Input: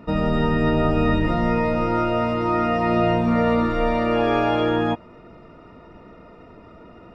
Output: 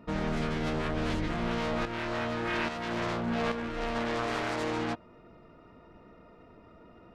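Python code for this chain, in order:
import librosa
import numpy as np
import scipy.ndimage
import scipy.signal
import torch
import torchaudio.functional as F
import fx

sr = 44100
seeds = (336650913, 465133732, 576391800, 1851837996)

y = fx.self_delay(x, sr, depth_ms=0.6)
y = fx.tremolo_shape(y, sr, shape='saw_up', hz=1.2, depth_pct=60, at=(1.85, 3.96))
y = fx.rider(y, sr, range_db=10, speed_s=0.5)
y = y * 10.0 ** (-9.0 / 20.0)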